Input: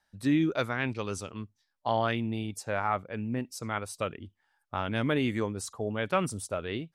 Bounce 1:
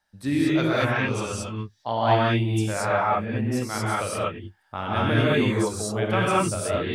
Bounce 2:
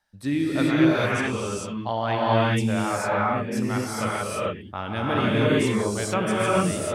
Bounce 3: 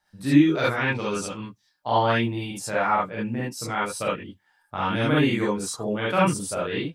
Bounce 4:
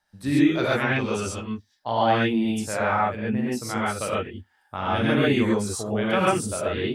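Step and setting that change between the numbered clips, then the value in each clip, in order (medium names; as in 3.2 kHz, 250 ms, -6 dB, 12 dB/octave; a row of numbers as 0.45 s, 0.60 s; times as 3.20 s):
gated-style reverb, gate: 250 ms, 470 ms, 90 ms, 160 ms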